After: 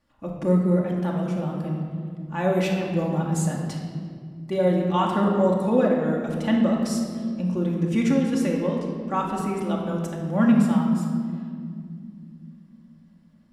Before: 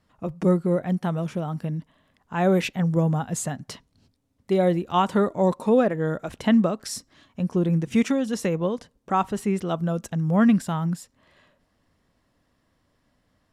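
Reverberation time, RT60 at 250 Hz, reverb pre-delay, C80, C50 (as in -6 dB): 2.3 s, 4.4 s, 3 ms, 4.0 dB, 2.5 dB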